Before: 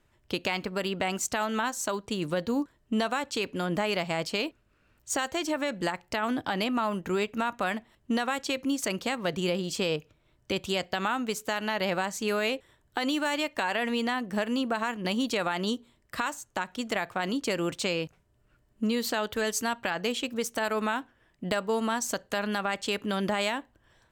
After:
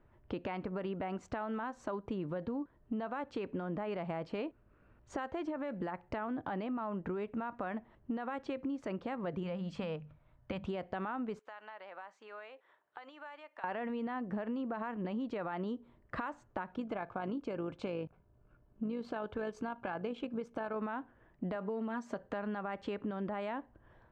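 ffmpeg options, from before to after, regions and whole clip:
ffmpeg -i in.wav -filter_complex "[0:a]asettb=1/sr,asplit=3[link_01][link_02][link_03];[link_01]atrim=end=9.434[link_04];[link_02]atrim=start=9.43:end=10.65,asetpts=PTS-STARTPTS,afade=type=in:duration=0.004:curve=qsin,afade=type=out:start_time=1.216:duration=0.004:curve=qsin,equalizer=frequency=370:width=2.3:gain=-14.5,bandreject=frequency=50:width_type=h:width=6,bandreject=frequency=100:width_type=h:width=6,bandreject=frequency=150:width_type=h:width=6,bandreject=frequency=200:width_type=h:width=6,bandreject=frequency=250:width_type=h:width=6[link_05];[link_03]atrim=start=10.646[link_06];[link_04][link_05]acrossfade=duration=0.004:curve1=hsin:curve2=qsin[link_07];[link_07][link_06]acrossfade=duration=0.004:curve1=qsin:curve2=hsin,asettb=1/sr,asplit=3[link_08][link_09][link_10];[link_08]atrim=end=11.394[link_11];[link_09]atrim=start=11.39:end=13.64,asetpts=PTS-STARTPTS,afade=type=in:duration=0.004:curve=qsin,afade=type=out:start_time=2.246:duration=0.004:curve=qsin,highpass=830,acompressor=threshold=-57dB:ratio=2:attack=3.2:release=140:knee=1:detection=peak[link_12];[link_10]atrim=start=13.636[link_13];[link_11][link_12]acrossfade=duration=0.004:curve1=hsin:curve2=qsin[link_14];[link_14][link_13]acrossfade=duration=0.004:curve1=qsin:curve2=hsin,asettb=1/sr,asplit=3[link_15][link_16][link_17];[link_15]atrim=end=16.724[link_18];[link_16]atrim=start=16.72:end=20.77,asetpts=PTS-STARTPTS,afade=type=in:duration=0.004:curve=qsin,afade=type=out:start_time=4.046:duration=0.004:curve=qsin,asuperstop=centerf=1900:order=8:qfactor=7.7,tremolo=f=52:d=0.4[link_19];[link_17]atrim=start=20.766[link_20];[link_18][link_19]acrossfade=duration=0.004:curve1=hsin:curve2=qsin[link_21];[link_21][link_20]acrossfade=duration=0.004:curve1=qsin:curve2=hsin,asettb=1/sr,asplit=3[link_22][link_23][link_24];[link_22]atrim=end=21.554[link_25];[link_23]atrim=start=21.55:end=22.19,asetpts=PTS-STARTPTS,afade=type=in:duration=0.004:curve=qsin,afade=type=out:start_time=0.636:duration=0.004:curve=qsin,highpass=140,aecho=1:1:4.9:0.6,atrim=end_sample=28224[link_26];[link_24]atrim=start=22.186[link_27];[link_25][link_26]acrossfade=duration=0.004:curve1=hsin:curve2=qsin[link_28];[link_28][link_27]acrossfade=duration=0.004:curve1=qsin:curve2=hsin,lowpass=1300,alimiter=level_in=0.5dB:limit=-24dB:level=0:latency=1:release=39,volume=-0.5dB,acompressor=threshold=-38dB:ratio=6,volume=3dB" out.wav

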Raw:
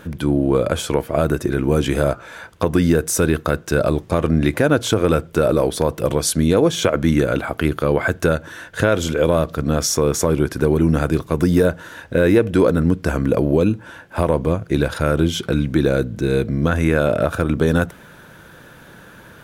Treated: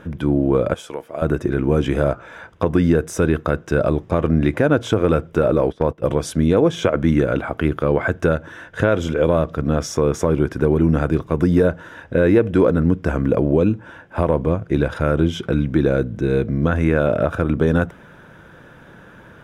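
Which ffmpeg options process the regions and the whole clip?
ffmpeg -i in.wav -filter_complex "[0:a]asettb=1/sr,asplit=3[link_01][link_02][link_03];[link_01]atrim=end=0.744[link_04];[link_02]atrim=start=0.74:end=1.22,asetpts=PTS-STARTPTS,afade=type=in:duration=0.004:curve=qsin,afade=type=out:start_time=0.476:duration=0.004:curve=qsin,highpass=frequency=1100:poles=1,equalizer=frequency=1800:width_type=o:width=2.4:gain=-6.5[link_05];[link_03]atrim=start=1.216[link_06];[link_04][link_05]acrossfade=duration=0.004:curve1=hsin:curve2=qsin[link_07];[link_07][link_06]acrossfade=duration=0.004:curve1=qsin:curve2=hsin,asettb=1/sr,asplit=3[link_08][link_09][link_10];[link_08]atrim=end=5.434[link_11];[link_09]atrim=start=5.43:end=6.03,asetpts=PTS-STARTPTS,afade=type=in:duration=0.004:curve=qsin,afade=type=out:start_time=0.596:duration=0.004:curve=qsin,acrossover=split=5100[link_12][link_13];[link_13]acompressor=threshold=-43dB:ratio=4:attack=1:release=60[link_14];[link_12][link_14]amix=inputs=2:normalize=0,agate=range=-15dB:threshold=-25dB:ratio=16:release=100:detection=peak[link_15];[link_10]atrim=start=6.026[link_16];[link_11][link_15]acrossfade=duration=0.004:curve1=hsin:curve2=qsin[link_17];[link_17][link_16]acrossfade=duration=0.004:curve1=qsin:curve2=hsin,aemphasis=mode=reproduction:type=75kf,bandreject=frequency=4300:width=6.4" out.wav

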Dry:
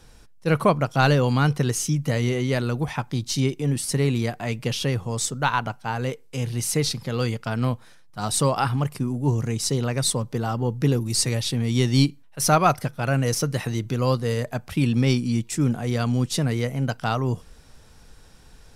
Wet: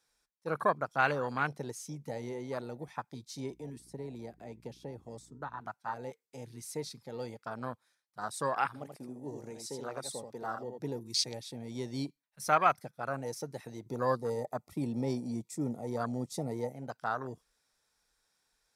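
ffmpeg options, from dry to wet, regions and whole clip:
ffmpeg -i in.wav -filter_complex "[0:a]asettb=1/sr,asplit=3[link_01][link_02][link_03];[link_01]atrim=end=3.504[link_04];[link_02]atrim=start=3.5:end=5.61,asetpts=PTS-STARTPTS,afade=type=in:duration=0.004:curve=qsin,afade=type=out:start_time=2.106:duration=0.004:curve=qsin,acrossover=split=430|950[link_05][link_06][link_07];[link_05]acompressor=threshold=-22dB:ratio=4[link_08];[link_06]acompressor=threshold=-38dB:ratio=4[link_09];[link_07]acompressor=threshold=-40dB:ratio=4[link_10];[link_08][link_09][link_10]amix=inputs=3:normalize=0,aeval=exprs='val(0)+0.0126*(sin(2*PI*60*n/s)+sin(2*PI*2*60*n/s)/2+sin(2*PI*3*60*n/s)/3+sin(2*PI*4*60*n/s)/4+sin(2*PI*5*60*n/s)/5)':channel_layout=same[link_11];[link_03]atrim=start=5.606[link_12];[link_04][link_11]acrossfade=duration=0.004:curve1=hsin:curve2=qsin[link_13];[link_13][link_12]acrossfade=duration=0.004:curve1=qsin:curve2=hsin,asettb=1/sr,asplit=3[link_14][link_15][link_16];[link_14]atrim=end=8.664[link_17];[link_15]atrim=start=8.66:end=10.8,asetpts=PTS-STARTPTS,afade=type=in:duration=0.004:curve=qsin,afade=type=out:start_time=2.136:duration=0.004:curve=qsin,highpass=frequency=230:poles=1,aecho=1:1:81:0.531,atrim=end_sample=94374[link_18];[link_16]atrim=start=10.796[link_19];[link_17][link_18]acrossfade=duration=0.004:curve1=hsin:curve2=qsin[link_20];[link_20][link_19]acrossfade=duration=0.004:curve1=qsin:curve2=hsin,asettb=1/sr,asplit=3[link_21][link_22][link_23];[link_21]atrim=end=13.864[link_24];[link_22]atrim=start=13.86:end=16.73,asetpts=PTS-STARTPTS,afade=type=in:duration=0.004:curve=qsin,afade=type=out:start_time=2.866:duration=0.004:curve=qsin,equalizer=frequency=2800:width_type=o:width=1.4:gain=-9,acontrast=31,asuperstop=centerf=1600:order=8:qfactor=4.4[link_25];[link_23]atrim=start=16.726[link_26];[link_24][link_25]acrossfade=duration=0.004:curve1=hsin:curve2=qsin[link_27];[link_27][link_26]acrossfade=duration=0.004:curve1=qsin:curve2=hsin,afwtdn=0.0501,highpass=frequency=1400:poles=1,equalizer=frequency=2900:width=7.1:gain=-9.5,volume=-1.5dB" out.wav

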